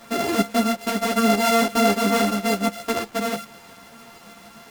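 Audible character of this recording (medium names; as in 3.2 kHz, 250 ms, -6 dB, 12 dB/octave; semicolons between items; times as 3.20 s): a buzz of ramps at a fixed pitch in blocks of 64 samples; tremolo saw up 6.7 Hz, depth 35%; a quantiser's noise floor 8-bit, dither none; a shimmering, thickened sound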